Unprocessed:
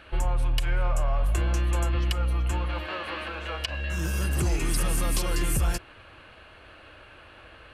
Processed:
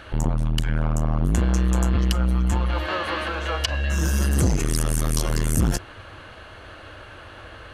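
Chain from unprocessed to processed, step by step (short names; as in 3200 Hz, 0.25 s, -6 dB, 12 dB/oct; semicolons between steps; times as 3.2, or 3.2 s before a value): thirty-one-band EQ 100 Hz +6 dB, 2500 Hz -7 dB, 6300 Hz +6 dB; core saturation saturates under 250 Hz; gain +8 dB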